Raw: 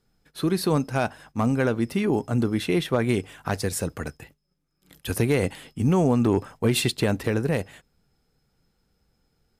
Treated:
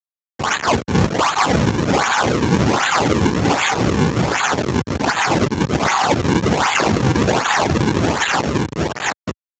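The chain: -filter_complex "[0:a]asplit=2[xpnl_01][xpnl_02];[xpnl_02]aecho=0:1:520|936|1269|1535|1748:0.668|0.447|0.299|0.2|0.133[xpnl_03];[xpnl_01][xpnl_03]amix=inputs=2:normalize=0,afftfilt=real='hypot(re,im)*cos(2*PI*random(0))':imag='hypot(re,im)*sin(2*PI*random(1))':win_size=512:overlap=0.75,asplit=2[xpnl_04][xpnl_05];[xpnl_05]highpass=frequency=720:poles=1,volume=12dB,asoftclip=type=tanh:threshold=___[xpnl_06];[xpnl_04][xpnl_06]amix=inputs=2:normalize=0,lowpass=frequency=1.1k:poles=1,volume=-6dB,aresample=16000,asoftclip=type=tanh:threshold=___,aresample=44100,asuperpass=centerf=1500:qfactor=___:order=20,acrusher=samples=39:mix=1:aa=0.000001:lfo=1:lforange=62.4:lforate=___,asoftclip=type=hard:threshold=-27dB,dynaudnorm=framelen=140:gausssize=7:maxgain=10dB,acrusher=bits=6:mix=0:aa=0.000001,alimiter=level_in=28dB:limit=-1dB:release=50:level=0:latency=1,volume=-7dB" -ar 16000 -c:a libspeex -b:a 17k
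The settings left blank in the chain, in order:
-12dB, -25.5dB, 0.7, 1.3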